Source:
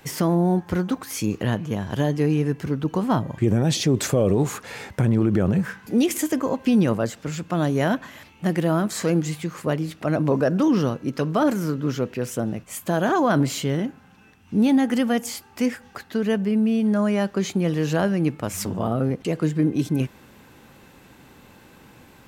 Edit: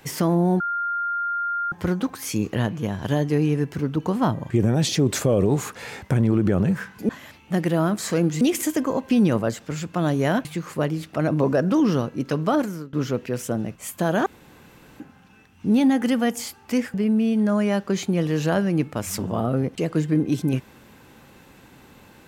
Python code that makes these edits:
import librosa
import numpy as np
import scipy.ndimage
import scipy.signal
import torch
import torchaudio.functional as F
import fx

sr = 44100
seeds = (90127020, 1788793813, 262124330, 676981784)

y = fx.edit(x, sr, fx.insert_tone(at_s=0.6, length_s=1.12, hz=1400.0, db=-22.5),
    fx.move(start_s=8.01, length_s=1.32, to_s=5.97),
    fx.fade_out_to(start_s=11.38, length_s=0.43, floor_db=-22.0),
    fx.room_tone_fill(start_s=13.14, length_s=0.74),
    fx.cut(start_s=15.82, length_s=0.59), tone=tone)